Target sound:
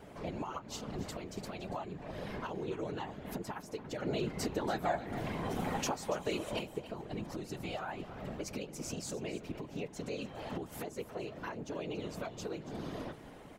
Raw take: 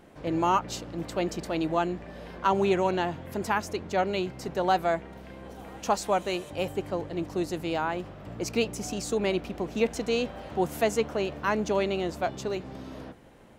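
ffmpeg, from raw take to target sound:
ffmpeg -i in.wav -filter_complex "[0:a]aecho=1:1:4.8:0.98,acompressor=threshold=-33dB:ratio=6,alimiter=level_in=4dB:limit=-24dB:level=0:latency=1:release=446,volume=-4dB,asettb=1/sr,asplit=3[link_01][link_02][link_03];[link_01]atrim=end=4.024[link_04];[link_02]atrim=start=4.02:end=6.59,asetpts=PTS-STARTPTS,afade=type=in:duration=0.004:curve=qsin,afade=type=out:start_time=2.566:duration=0.004:curve=qsin,acontrast=52[link_05];[link_03]atrim=start=6.586[link_06];[link_04][link_05]acrossfade=duration=0.004:curve1=hsin:curve2=qsin[link_07];[link_07][link_06]acrossfade=duration=0.004:curve1=qsin:curve2=hsin,afftfilt=real='hypot(re,im)*cos(2*PI*random(0))':imag='hypot(re,im)*sin(2*PI*random(1))':win_size=512:overlap=0.75,aecho=1:1:283:0.188,volume=4.5dB" out.wav

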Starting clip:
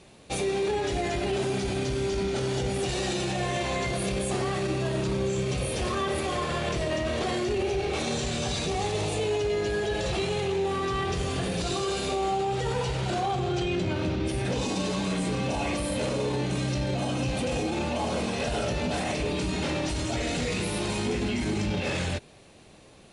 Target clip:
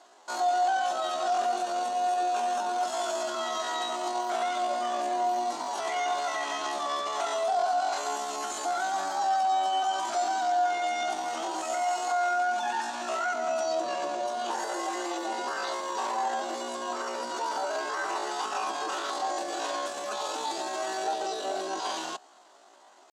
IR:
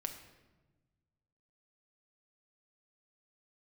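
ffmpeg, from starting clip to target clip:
-af "highpass=frequency=210:width=0.5412,highpass=frequency=210:width=1.3066,equalizer=frequency=260:width_type=q:width=4:gain=-10,equalizer=frequency=390:width_type=q:width=4:gain=4,equalizer=frequency=690:width_type=q:width=4:gain=-3,equalizer=frequency=1200:width_type=q:width=4:gain=-6,equalizer=frequency=2700:width_type=q:width=4:gain=-7,lowpass=frequency=4000:width=0.5412,lowpass=frequency=4000:width=1.3066,asetrate=80880,aresample=44100,atempo=0.545254"

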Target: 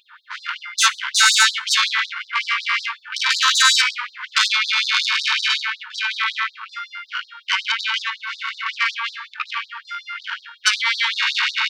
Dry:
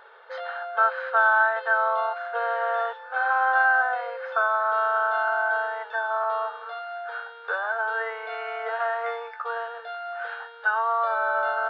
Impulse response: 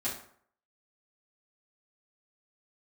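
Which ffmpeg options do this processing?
-filter_complex "[0:a]aeval=exprs='0.355*(cos(1*acos(clip(val(0)/0.355,-1,1)))-cos(1*PI/2))+0.112*(cos(7*acos(clip(val(0)/0.355,-1,1)))-cos(7*PI/2))+0.112*(cos(8*acos(clip(val(0)/0.355,-1,1)))-cos(8*PI/2))':channel_layout=same,acontrast=90,asplit=2[link_01][link_02];[1:a]atrim=start_sample=2205,adelay=12[link_03];[link_02][link_03]afir=irnorm=-1:irlink=0,volume=-18dB[link_04];[link_01][link_04]amix=inputs=2:normalize=0,afftfilt=real='re*gte(b*sr/1024,870*pow(3800/870,0.5+0.5*sin(2*PI*5.4*pts/sr)))':imag='im*gte(b*sr/1024,870*pow(3800/870,0.5+0.5*sin(2*PI*5.4*pts/sr)))':win_size=1024:overlap=0.75"

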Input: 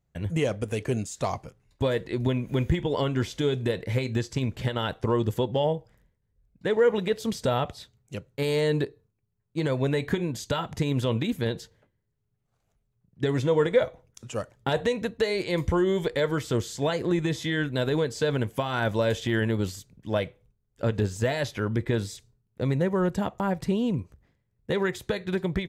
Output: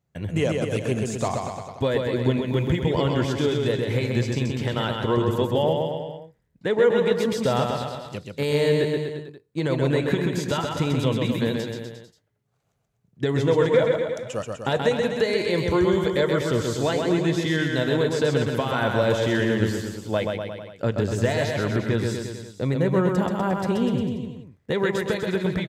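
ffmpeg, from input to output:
ffmpeg -i in.wav -af "highpass=89,highshelf=frequency=10000:gain=-3.5,aecho=1:1:130|247|352.3|447.1|532.4:0.631|0.398|0.251|0.158|0.1,volume=2dB" out.wav

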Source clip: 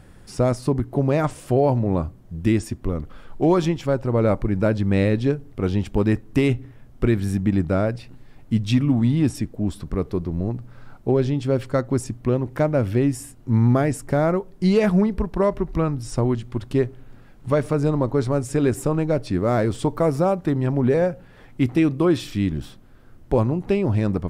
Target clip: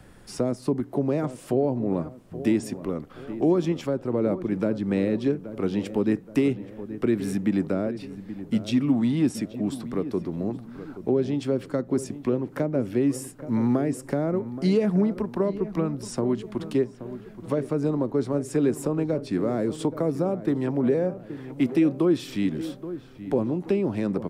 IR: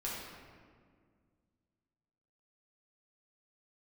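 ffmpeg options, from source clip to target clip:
-filter_complex "[0:a]acrossover=split=440[link_01][link_02];[link_02]acompressor=threshold=-33dB:ratio=6[link_03];[link_01][link_03]amix=inputs=2:normalize=0,asplit=2[link_04][link_05];[link_05]adelay=826,lowpass=frequency=1700:poles=1,volume=-13dB,asplit=2[link_06][link_07];[link_07]adelay=826,lowpass=frequency=1700:poles=1,volume=0.46,asplit=2[link_08][link_09];[link_09]adelay=826,lowpass=frequency=1700:poles=1,volume=0.46,asplit=2[link_10][link_11];[link_11]adelay=826,lowpass=frequency=1700:poles=1,volume=0.46,asplit=2[link_12][link_13];[link_13]adelay=826,lowpass=frequency=1700:poles=1,volume=0.46[link_14];[link_04][link_06][link_08][link_10][link_12][link_14]amix=inputs=6:normalize=0,acrossover=split=170|410|3400[link_15][link_16][link_17][link_18];[link_15]acompressor=threshold=-51dB:ratio=6[link_19];[link_19][link_16][link_17][link_18]amix=inputs=4:normalize=0"

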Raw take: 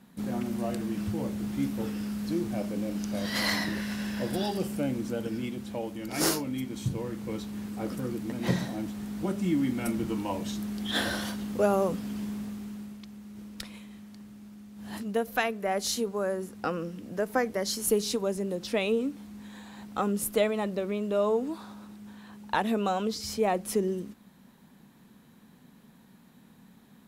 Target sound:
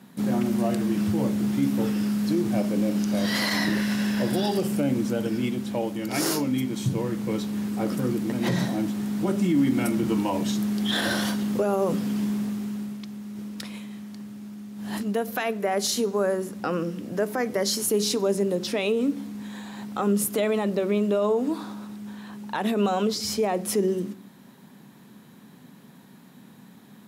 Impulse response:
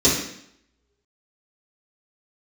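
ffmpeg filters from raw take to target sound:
-filter_complex "[0:a]highpass=frequency=100:width=0.5412,highpass=frequency=100:width=1.3066,alimiter=limit=-22.5dB:level=0:latency=1:release=46,asplit=2[link_01][link_02];[1:a]atrim=start_sample=2205[link_03];[link_02][link_03]afir=irnorm=-1:irlink=0,volume=-36dB[link_04];[link_01][link_04]amix=inputs=2:normalize=0,volume=6.5dB"

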